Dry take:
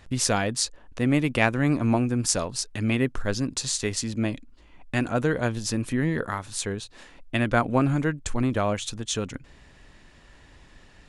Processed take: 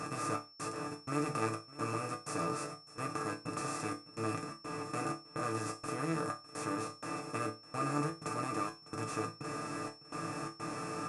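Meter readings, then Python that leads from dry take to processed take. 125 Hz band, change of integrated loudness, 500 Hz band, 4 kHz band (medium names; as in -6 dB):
-14.5 dB, -12.5 dB, -11.0 dB, -15.5 dB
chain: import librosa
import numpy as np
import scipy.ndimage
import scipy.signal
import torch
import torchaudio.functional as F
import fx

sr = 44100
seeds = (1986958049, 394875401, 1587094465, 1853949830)

y = fx.bin_compress(x, sr, power=0.2)
y = scipy.signal.sosfilt(scipy.signal.butter(4, 53.0, 'highpass', fs=sr, output='sos'), y)
y = fx.peak_eq(y, sr, hz=3400.0, db=-12.5, octaves=1.9)
y = fx.hum_notches(y, sr, base_hz=50, count=3)
y = y + 0.5 * np.pad(y, (int(6.6 * sr / 1000.0), 0))[:len(y)]
y = fx.step_gate(y, sr, bpm=126, pattern='xxx..xxx.x', floor_db=-60.0, edge_ms=4.5)
y = fx.small_body(y, sr, hz=(1200.0, 2600.0), ring_ms=35, db=17)
y = y + 10.0 ** (-31.0 / 20.0) * np.sin(2.0 * np.pi * 5400.0 * np.arange(len(y)) / sr)
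y = fx.resonator_bank(y, sr, root=45, chord='sus4', decay_s=0.27)
y = y + 10.0 ** (-18.5 / 20.0) * np.pad(y, (int(605 * sr / 1000.0), 0))[:len(y)]
y = y * librosa.db_to_amplitude(-8.0)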